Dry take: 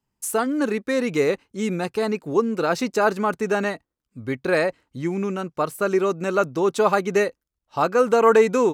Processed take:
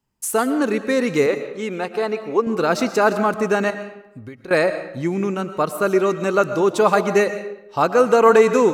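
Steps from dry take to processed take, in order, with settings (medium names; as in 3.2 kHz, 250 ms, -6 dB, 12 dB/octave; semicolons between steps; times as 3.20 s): 1.26–2.47 s: tone controls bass -13 dB, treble -9 dB; 3.70–4.51 s: compression 10:1, threshold -37 dBFS, peak gain reduction 17.5 dB; reverberation RT60 0.85 s, pre-delay 80 ms, DRR 10.5 dB; trim +3 dB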